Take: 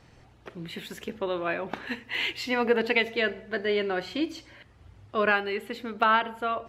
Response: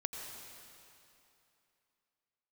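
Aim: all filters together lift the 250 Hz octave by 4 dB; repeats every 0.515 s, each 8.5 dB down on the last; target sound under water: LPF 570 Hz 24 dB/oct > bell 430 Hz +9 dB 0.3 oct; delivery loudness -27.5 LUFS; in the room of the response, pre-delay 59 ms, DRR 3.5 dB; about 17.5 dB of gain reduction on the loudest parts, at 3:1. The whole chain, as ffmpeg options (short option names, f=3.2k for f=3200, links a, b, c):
-filter_complex "[0:a]equalizer=f=250:t=o:g=4,acompressor=threshold=-42dB:ratio=3,aecho=1:1:515|1030|1545|2060:0.376|0.143|0.0543|0.0206,asplit=2[a][b];[1:a]atrim=start_sample=2205,adelay=59[c];[b][c]afir=irnorm=-1:irlink=0,volume=-4dB[d];[a][d]amix=inputs=2:normalize=0,lowpass=f=570:w=0.5412,lowpass=f=570:w=1.3066,equalizer=f=430:t=o:w=0.3:g=9,volume=11.5dB"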